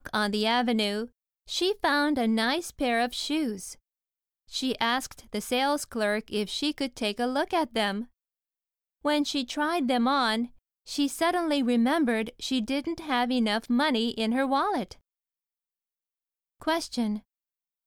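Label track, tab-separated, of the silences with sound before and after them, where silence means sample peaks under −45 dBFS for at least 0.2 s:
1.080000	1.480000	silence
3.740000	4.490000	silence
8.050000	9.050000	silence
10.470000	10.870000	silence
14.940000	16.610000	silence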